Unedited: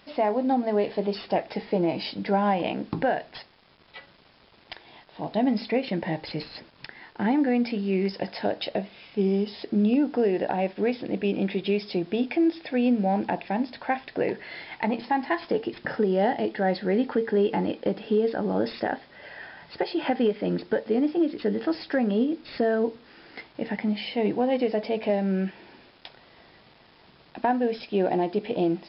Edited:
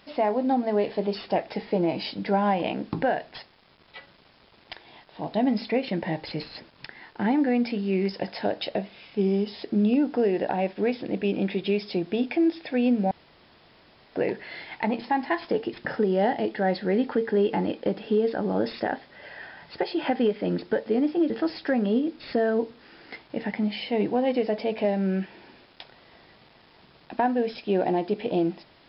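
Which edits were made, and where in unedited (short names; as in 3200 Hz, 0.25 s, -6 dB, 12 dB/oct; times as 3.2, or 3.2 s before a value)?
13.11–14.13 room tone
21.3–21.55 cut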